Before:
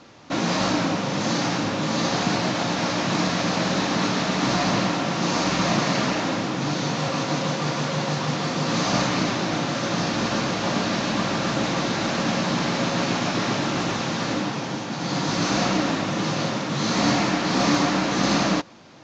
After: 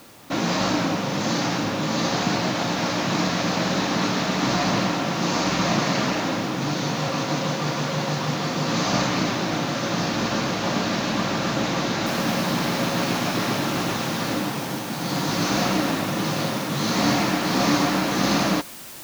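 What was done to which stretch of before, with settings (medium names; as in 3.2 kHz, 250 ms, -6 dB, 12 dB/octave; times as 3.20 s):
12.06 s: noise floor step -52 dB -40 dB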